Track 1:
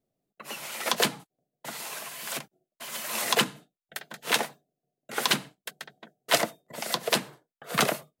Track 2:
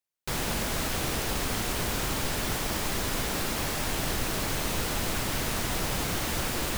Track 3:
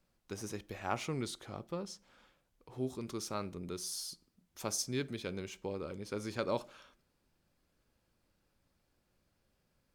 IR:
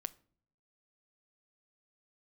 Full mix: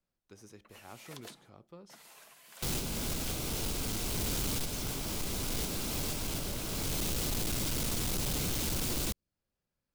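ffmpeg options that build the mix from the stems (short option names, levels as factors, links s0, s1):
-filter_complex "[0:a]acompressor=threshold=0.0501:ratio=6,adelay=250,volume=0.126[s0];[1:a]bandreject=f=1800:w=7.1,adelay=2350,volume=1.12,asplit=2[s1][s2];[s2]volume=0.335[s3];[2:a]volume=0.266,asplit=2[s4][s5];[s5]apad=whole_len=402261[s6];[s1][s6]sidechaincompress=threshold=0.002:ratio=8:attack=5.2:release=370[s7];[3:a]atrim=start_sample=2205[s8];[s3][s8]afir=irnorm=-1:irlink=0[s9];[s0][s7][s4][s9]amix=inputs=4:normalize=0,acrossover=split=450|3000[s10][s11][s12];[s11]acompressor=threshold=0.00282:ratio=2[s13];[s10][s13][s12]amix=inputs=3:normalize=0,asoftclip=type=hard:threshold=0.0299"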